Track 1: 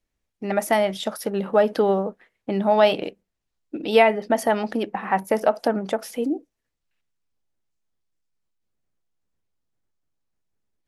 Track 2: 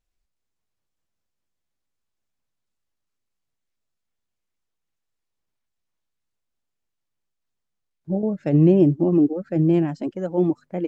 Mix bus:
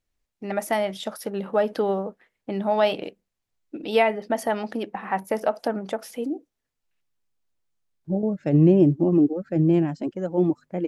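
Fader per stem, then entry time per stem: -4.0 dB, -1.0 dB; 0.00 s, 0.00 s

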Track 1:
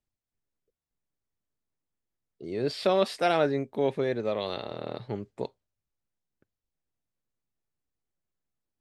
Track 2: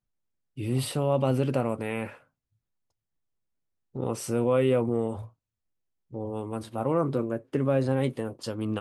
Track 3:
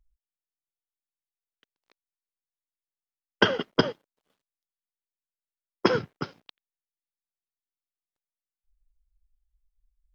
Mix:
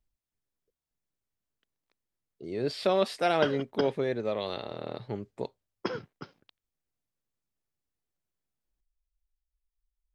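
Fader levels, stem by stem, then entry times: -1.5 dB, mute, -11.0 dB; 0.00 s, mute, 0.00 s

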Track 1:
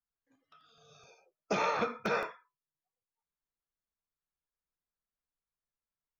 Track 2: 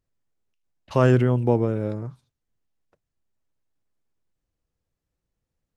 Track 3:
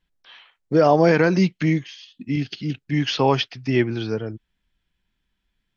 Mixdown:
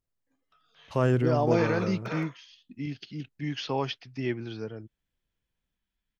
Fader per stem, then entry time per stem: -5.0 dB, -6.5 dB, -11.0 dB; 0.00 s, 0.00 s, 0.50 s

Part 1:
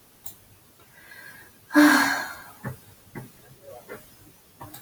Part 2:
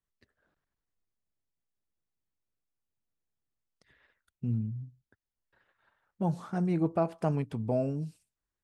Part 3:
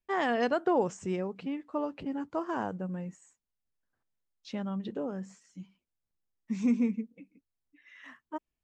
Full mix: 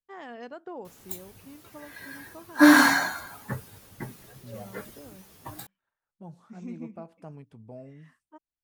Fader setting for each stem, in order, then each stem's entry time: +1.0 dB, -15.0 dB, -13.5 dB; 0.85 s, 0.00 s, 0.00 s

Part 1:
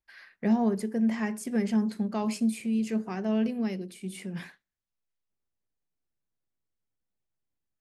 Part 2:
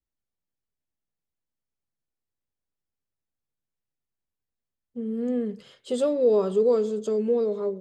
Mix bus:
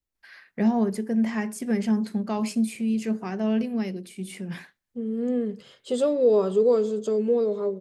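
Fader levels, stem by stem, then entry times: +2.5 dB, +1.0 dB; 0.15 s, 0.00 s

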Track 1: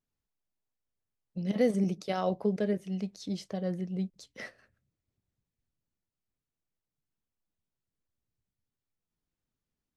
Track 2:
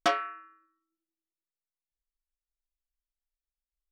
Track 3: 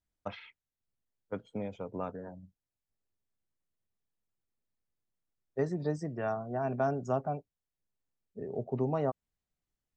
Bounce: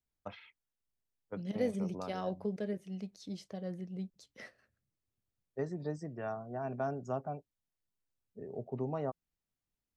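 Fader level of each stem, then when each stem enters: -7.5 dB, mute, -5.5 dB; 0.00 s, mute, 0.00 s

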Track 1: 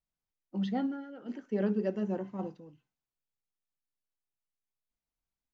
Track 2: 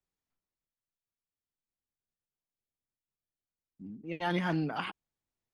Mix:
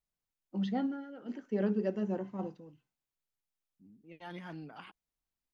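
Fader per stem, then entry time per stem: -1.0 dB, -14.0 dB; 0.00 s, 0.00 s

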